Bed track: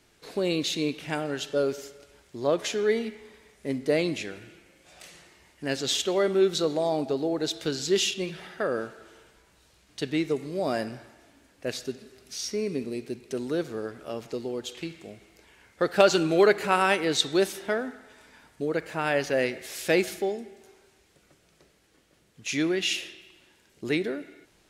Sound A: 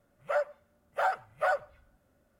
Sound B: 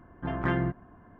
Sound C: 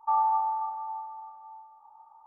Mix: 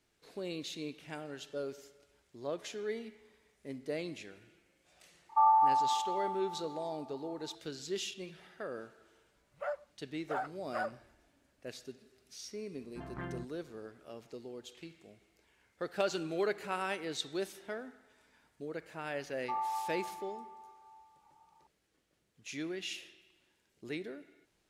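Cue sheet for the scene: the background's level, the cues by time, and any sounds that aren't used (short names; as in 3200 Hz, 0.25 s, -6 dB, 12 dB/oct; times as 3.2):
bed track -13.5 dB
5.29 add C
9.32 add A -8.5 dB + high shelf 4300 Hz -6.5 dB
12.73 add B -14.5 dB
19.41 add C -11 dB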